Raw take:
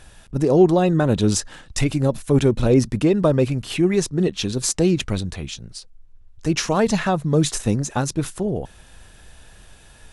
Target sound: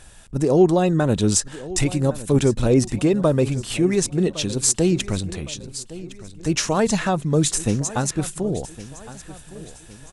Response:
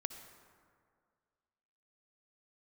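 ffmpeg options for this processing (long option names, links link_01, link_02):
-filter_complex "[0:a]equalizer=frequency=8100:width=1.6:gain=7.5,asplit=2[link_01][link_02];[link_02]aecho=0:1:1111|2222|3333|4444:0.141|0.0607|0.0261|0.0112[link_03];[link_01][link_03]amix=inputs=2:normalize=0,volume=-1dB"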